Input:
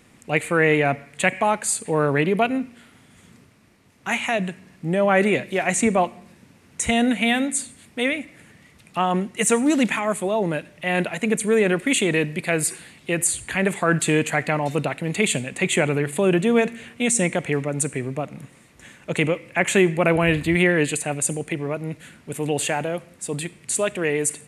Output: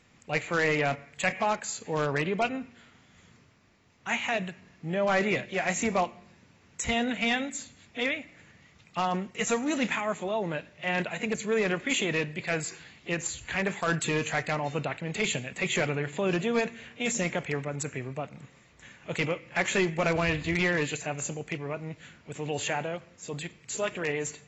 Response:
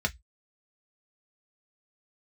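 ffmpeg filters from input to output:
-filter_complex "[0:a]equalizer=f=280:w=0.94:g=-5.5,asplit=2[s0][s1];[s1]aeval=exprs='(mod(3.76*val(0)+1,2)-1)/3.76':c=same,volume=0.316[s2];[s0][s2]amix=inputs=2:normalize=0,volume=0.398" -ar 22050 -c:a aac -b:a 24k

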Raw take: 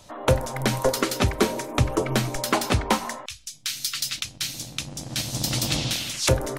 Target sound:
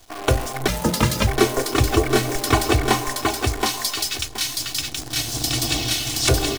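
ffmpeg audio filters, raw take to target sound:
-filter_complex "[0:a]aecho=1:1:2.7:0.98,aecho=1:1:723|1446|2169:0.708|0.163|0.0375,acrusher=bits=6:dc=4:mix=0:aa=0.000001,asplit=3[s0][s1][s2];[s0]afade=t=out:st=0.67:d=0.02[s3];[s1]afreqshift=-180,afade=t=in:st=0.67:d=0.02,afade=t=out:st=1.26:d=0.02[s4];[s2]afade=t=in:st=1.26:d=0.02[s5];[s3][s4][s5]amix=inputs=3:normalize=0"

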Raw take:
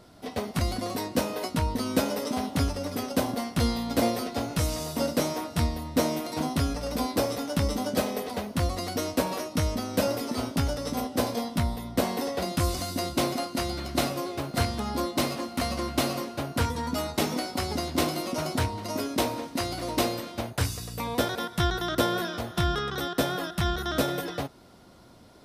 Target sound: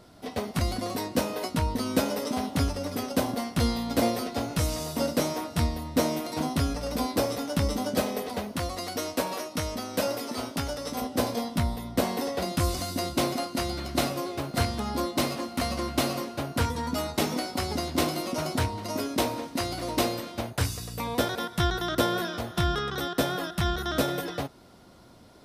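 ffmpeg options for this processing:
-filter_complex "[0:a]asettb=1/sr,asplit=3[s0][s1][s2];[s0]atrim=end=8.564[s3];[s1]atrim=start=8.56:end=11.02,asetpts=PTS-STARTPTS,afade=t=in:d=0.004:c=qsin,afade=t=out:st=2.456:d=0.004:c=qsin,lowshelf=f=260:g=-8.5[s4];[s2]atrim=start=11.016[s5];[s3][s4]acrossfade=d=0.004:c1=hsin:c2=qsin[s6];[s6][s5]acrossfade=d=0.004:c1=qsin:c2=hsin"

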